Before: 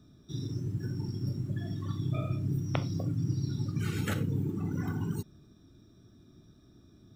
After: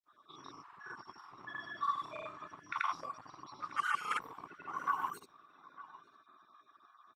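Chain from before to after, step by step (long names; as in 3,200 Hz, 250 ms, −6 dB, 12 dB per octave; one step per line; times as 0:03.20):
time-frequency cells dropped at random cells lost 24%
parametric band 7,200 Hz −8 dB 2.1 octaves
brickwall limiter −26 dBFS, peak gain reduction 5.5 dB
hard clipping −27.5 dBFS, distortion −27 dB
high-pass with resonance 1,100 Hz, resonance Q 8.3
granular cloud, pitch spread up and down by 0 semitones
single-tap delay 903 ms −18.5 dB
low-pass that shuts in the quiet parts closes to 2,800 Hz, open at −40.5 dBFS
level +7 dB
Opus 32 kbit/s 48,000 Hz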